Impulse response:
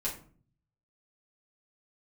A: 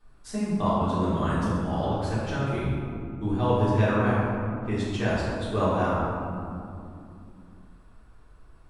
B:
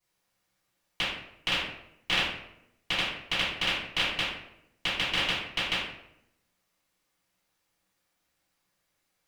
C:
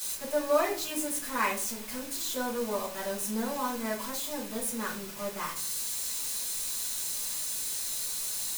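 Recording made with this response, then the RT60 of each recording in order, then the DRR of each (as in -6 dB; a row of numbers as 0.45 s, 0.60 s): C; 2.7 s, 0.80 s, 0.45 s; -11.0 dB, -14.5 dB, -7.0 dB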